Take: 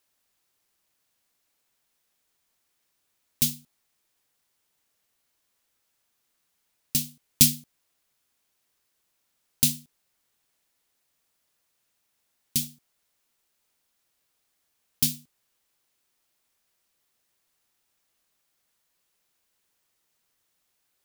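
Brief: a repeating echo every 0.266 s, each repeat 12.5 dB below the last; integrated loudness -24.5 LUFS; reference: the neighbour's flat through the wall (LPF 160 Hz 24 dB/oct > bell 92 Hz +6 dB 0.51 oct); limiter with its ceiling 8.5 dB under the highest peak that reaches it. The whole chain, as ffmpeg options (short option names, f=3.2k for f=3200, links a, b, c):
-af "alimiter=limit=-9.5dB:level=0:latency=1,lowpass=f=160:w=0.5412,lowpass=f=160:w=1.3066,equalizer=f=92:t=o:w=0.51:g=6,aecho=1:1:266|532|798:0.237|0.0569|0.0137,volume=20.5dB"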